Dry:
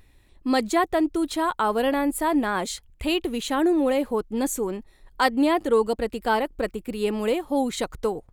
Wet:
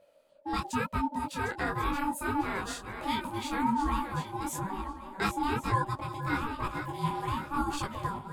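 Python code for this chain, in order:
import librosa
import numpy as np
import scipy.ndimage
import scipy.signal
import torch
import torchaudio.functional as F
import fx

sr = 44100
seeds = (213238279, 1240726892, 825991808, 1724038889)

p1 = fx.reverse_delay_fb(x, sr, ms=546, feedback_pct=46, wet_db=-8.5)
p2 = fx.rider(p1, sr, range_db=10, speed_s=2.0)
p3 = p1 + (p2 * 10.0 ** (0.0 / 20.0))
p4 = p3 * np.sin(2.0 * np.pi * 580.0 * np.arange(len(p3)) / sr)
p5 = fx.detune_double(p4, sr, cents=36)
y = p5 * 10.0 ** (-8.5 / 20.0)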